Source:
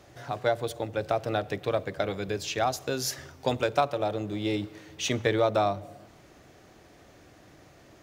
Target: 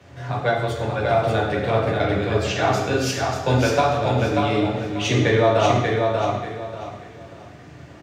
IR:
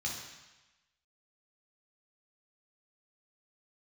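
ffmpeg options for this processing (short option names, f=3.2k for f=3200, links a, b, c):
-filter_complex "[0:a]bass=f=250:g=0,treble=f=4k:g=-10,aecho=1:1:588|1176|1764|2352:0.631|0.17|0.046|0.0124[a];[1:a]atrim=start_sample=2205,asetrate=52920,aresample=44100[b];[a][b]afir=irnorm=-1:irlink=0,volume=7.5dB"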